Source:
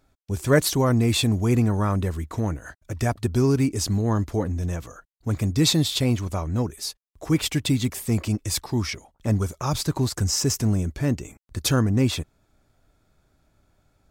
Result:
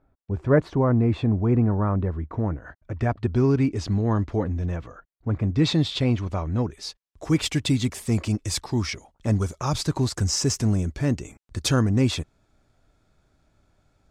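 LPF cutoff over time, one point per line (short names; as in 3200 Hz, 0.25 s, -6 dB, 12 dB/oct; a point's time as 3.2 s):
2.33 s 1300 Hz
3.55 s 3200 Hz
4.56 s 3200 Hz
5.38 s 1600 Hz
5.75 s 3600 Hz
6.63 s 3600 Hz
7.28 s 8500 Hz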